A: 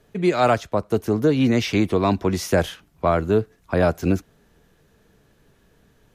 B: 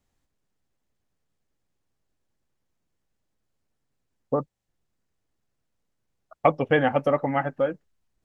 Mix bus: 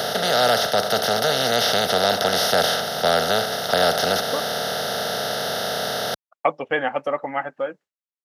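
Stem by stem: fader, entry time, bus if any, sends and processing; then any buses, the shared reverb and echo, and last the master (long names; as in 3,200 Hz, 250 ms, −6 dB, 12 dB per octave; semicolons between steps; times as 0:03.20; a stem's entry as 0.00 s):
−2.5 dB, 0.00 s, no send, compressor on every frequency bin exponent 0.2; bass and treble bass +6 dB, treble +14 dB; phaser with its sweep stopped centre 1,600 Hz, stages 8
+0.5 dB, 0.00 s, no send, downward expander −41 dBFS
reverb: not used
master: meter weighting curve A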